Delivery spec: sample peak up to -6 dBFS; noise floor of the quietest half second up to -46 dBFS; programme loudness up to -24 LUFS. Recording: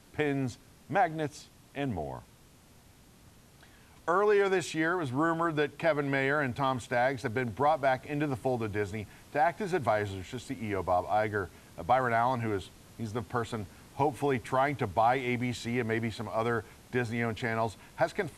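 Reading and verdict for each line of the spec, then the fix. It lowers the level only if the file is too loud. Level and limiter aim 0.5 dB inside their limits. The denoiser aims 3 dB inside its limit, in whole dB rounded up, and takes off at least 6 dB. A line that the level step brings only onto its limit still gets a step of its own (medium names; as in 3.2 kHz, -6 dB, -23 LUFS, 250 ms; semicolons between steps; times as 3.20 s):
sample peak -13.5 dBFS: pass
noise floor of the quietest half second -58 dBFS: pass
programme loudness -30.5 LUFS: pass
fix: none needed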